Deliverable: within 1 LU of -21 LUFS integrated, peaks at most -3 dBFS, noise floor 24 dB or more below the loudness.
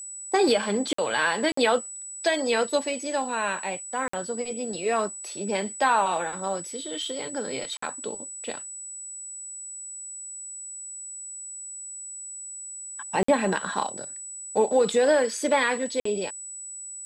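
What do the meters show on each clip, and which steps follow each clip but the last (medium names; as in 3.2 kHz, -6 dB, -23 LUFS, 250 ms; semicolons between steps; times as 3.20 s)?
dropouts 6; longest dropout 54 ms; steady tone 7.9 kHz; tone level -36 dBFS; loudness -27.5 LUFS; peak level -9.0 dBFS; loudness target -21.0 LUFS
-> interpolate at 0.93/1.52/4.08/7.77/13.23/16.00 s, 54 ms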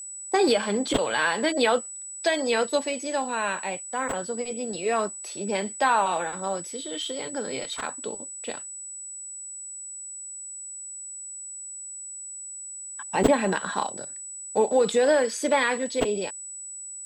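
dropouts 0; steady tone 7.9 kHz; tone level -36 dBFS
-> band-stop 7.9 kHz, Q 30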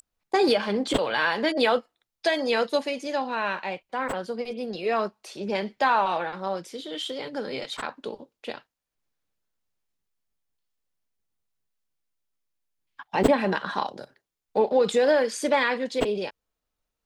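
steady tone not found; loudness -26.0 LUFS; peak level -5.5 dBFS; loudness target -21.0 LUFS
-> trim +5 dB; peak limiter -3 dBFS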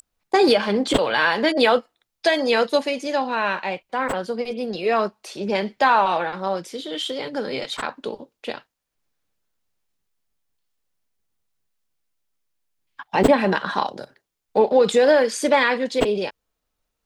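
loudness -21.0 LUFS; peak level -3.0 dBFS; noise floor -80 dBFS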